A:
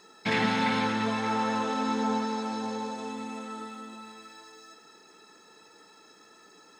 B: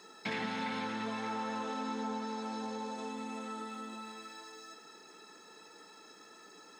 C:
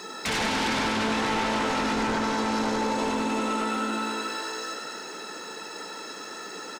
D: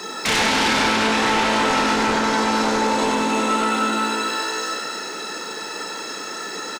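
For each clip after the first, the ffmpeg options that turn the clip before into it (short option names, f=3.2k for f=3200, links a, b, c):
-af "highpass=140,acompressor=threshold=-39dB:ratio=2.5"
-filter_complex "[0:a]aeval=exprs='0.0631*sin(PI/2*3.98*val(0)/0.0631)':c=same,asplit=9[a][b][c][d][e][f][g][h][i];[b]adelay=98,afreqshift=60,volume=-7dB[j];[c]adelay=196,afreqshift=120,volume=-11.4dB[k];[d]adelay=294,afreqshift=180,volume=-15.9dB[l];[e]adelay=392,afreqshift=240,volume=-20.3dB[m];[f]adelay=490,afreqshift=300,volume=-24.7dB[n];[g]adelay=588,afreqshift=360,volume=-29.2dB[o];[h]adelay=686,afreqshift=420,volume=-33.6dB[p];[i]adelay=784,afreqshift=480,volume=-38.1dB[q];[a][j][k][l][m][n][o][p][q]amix=inputs=9:normalize=0"
-filter_complex "[0:a]acrossover=split=260|1100[a][b][c];[a]asoftclip=type=tanh:threshold=-34.5dB[d];[c]asplit=2[e][f];[f]adelay=32,volume=-2.5dB[g];[e][g]amix=inputs=2:normalize=0[h];[d][b][h]amix=inputs=3:normalize=0,volume=7dB"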